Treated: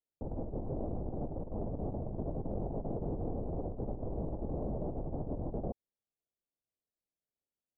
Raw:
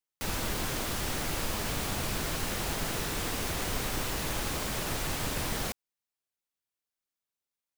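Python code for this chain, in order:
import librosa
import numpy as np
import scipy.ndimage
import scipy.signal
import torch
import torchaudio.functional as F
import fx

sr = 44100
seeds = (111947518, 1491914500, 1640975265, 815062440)

y = scipy.signal.sosfilt(scipy.signal.butter(6, 710.0, 'lowpass', fs=sr, output='sos'), x)
y = fx.over_compress(y, sr, threshold_db=-36.0, ratio=-0.5)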